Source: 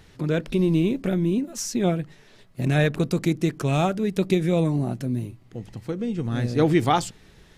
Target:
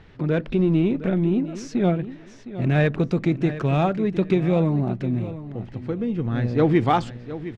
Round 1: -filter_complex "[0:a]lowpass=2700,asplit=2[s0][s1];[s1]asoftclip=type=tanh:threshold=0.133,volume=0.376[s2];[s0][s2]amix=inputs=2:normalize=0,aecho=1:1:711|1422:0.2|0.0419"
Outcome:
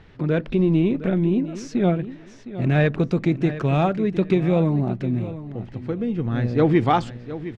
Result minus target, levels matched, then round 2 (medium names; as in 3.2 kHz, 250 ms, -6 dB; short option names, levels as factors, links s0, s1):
saturation: distortion -6 dB
-filter_complex "[0:a]lowpass=2700,asplit=2[s0][s1];[s1]asoftclip=type=tanh:threshold=0.0562,volume=0.376[s2];[s0][s2]amix=inputs=2:normalize=0,aecho=1:1:711|1422:0.2|0.0419"